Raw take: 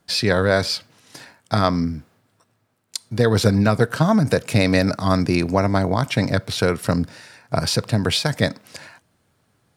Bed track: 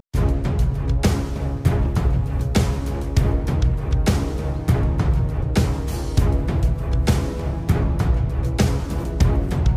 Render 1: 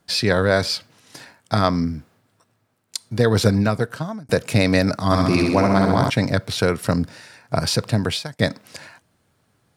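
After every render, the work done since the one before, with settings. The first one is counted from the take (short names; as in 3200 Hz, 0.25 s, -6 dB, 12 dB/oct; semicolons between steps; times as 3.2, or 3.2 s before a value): 3.49–4.29 fade out; 5.05–6.1 flutter echo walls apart 11.4 m, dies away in 1.1 s; 7.99–8.39 fade out linear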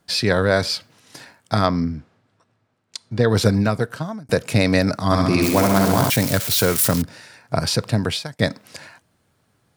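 1.66–3.29 air absorption 82 m; 5.42–7.02 switching spikes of -13 dBFS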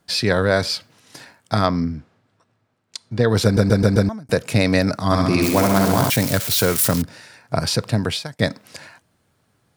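3.44 stutter in place 0.13 s, 5 plays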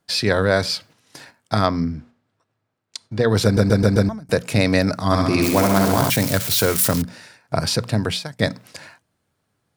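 gate -44 dBFS, range -7 dB; notches 60/120/180/240 Hz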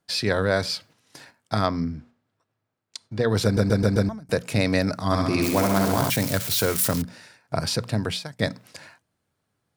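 gain -4.5 dB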